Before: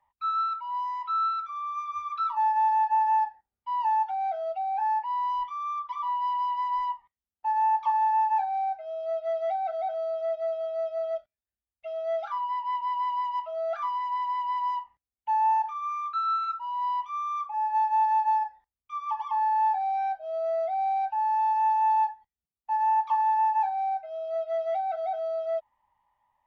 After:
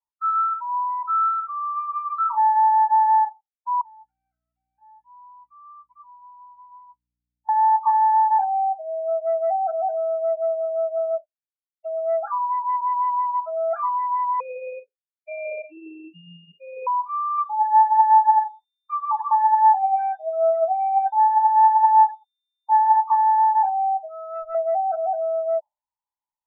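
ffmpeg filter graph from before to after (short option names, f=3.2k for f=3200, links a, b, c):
-filter_complex "[0:a]asettb=1/sr,asplit=3[a][b][c];[a]atrim=end=3.814[d];[b]atrim=start=3.81:end=7.49,asetpts=PTS-STARTPTS,afade=t=in:d=0.004:c=qsin,afade=t=out:st=3.676:d=0.004:c=qsin,highpass=f=1.1k:w=0.5412,highpass=f=1.1k:w=1.3066,aderivative,aeval=exprs='val(0)+0.001*(sin(2*PI*60*n/s)+sin(2*PI*2*60*n/s)/2+sin(2*PI*3*60*n/s)/3+sin(2*PI*4*60*n/s)/4+sin(2*PI*5*60*n/s)/5)':c=same[e];[c]atrim=start=7.486[f];[d][e]acrossfade=d=0.004:c1=hsin:c2=qsin[g];[g][f]acrossfade=d=0.004:c1=qsin:c2=hsin,asettb=1/sr,asplit=3[h][i][j];[h]atrim=end=14.404[k];[i]atrim=start=14.4:end=16.87,asetpts=PTS-STARTPTS,afade=t=in:d=0.004:c=qsin,afade=t=out:st=2.466:d=0.004:c=qsin,flanger=delay=0.7:depth=6.3:regen=-87:speed=1.5:shape=triangular,aeval=exprs='val(0)*sin(2*PI*1500*n/s)':c=same,highpass=370,equalizer=f=420:t=q:w=4:g=6,equalizer=f=700:t=q:w=4:g=-7,equalizer=f=1.3k:t=q:w=4:g=-9,lowpass=f=3k:w=0.5412,lowpass=f=3k:w=1.3066[l];[j]atrim=start=16.866[m];[k][l]acrossfade=d=0.004:c1=hsin:c2=qsin[n];[n][m]acrossfade=d=0.004:c1=qsin:c2=hsin,asettb=1/sr,asplit=3[o][p][q];[o]atrim=end=17.384[r];[p]atrim=start=17.38:end=22.97,asetpts=PTS-STARTPTS,afade=t=in:d=0.004:c=qsin,afade=t=out:st=5.586:d=0.004:c=qsin,aphaser=in_gain=1:out_gain=1:delay=3.5:decay=0.42:speed=1.3:type=sinusoidal,aeval=exprs='val(0)+0.00251*sin(2*PI*3600*n/s)':c=same,highpass=49[s];[q]atrim=start=22.966[t];[r][s]acrossfade=d=0.004:c1=hsin:c2=qsin[u];[u][t]acrossfade=d=0.004:c1=qsin:c2=hsin,asettb=1/sr,asplit=3[v][w][x];[v]atrim=end=24.084[y];[w]atrim=start=24.08:end=24.55,asetpts=PTS-STARTPTS,afade=t=in:d=0.004:c=qsin,afade=t=out:st=0.466:d=0.004:c=qsin,aeval=exprs='clip(val(0),-1,0.00944)':c=same,highpass=f=52:p=1,aecho=1:1:0.8:0.44,atrim=end_sample=20727[z];[x]atrim=start=24.546[aa];[y][z]acrossfade=d=0.004:c1=hsin:c2=qsin[ab];[ab][aa]acrossfade=d=0.004:c1=qsin:c2=hsin,afftdn=nr=31:nf=-35,lowpass=f=1.7k:w=0.5412,lowpass=f=1.7k:w=1.3066,volume=6.5dB"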